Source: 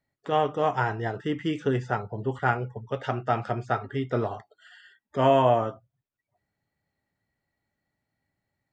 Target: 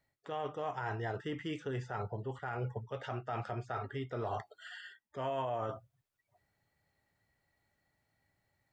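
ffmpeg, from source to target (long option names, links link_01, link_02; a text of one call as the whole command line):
ffmpeg -i in.wav -af "areverse,acompressor=threshold=-36dB:ratio=4,areverse,alimiter=level_in=5.5dB:limit=-24dB:level=0:latency=1:release=54,volume=-5.5dB,equalizer=frequency=230:width=1.1:gain=-6,volume=3.5dB" out.wav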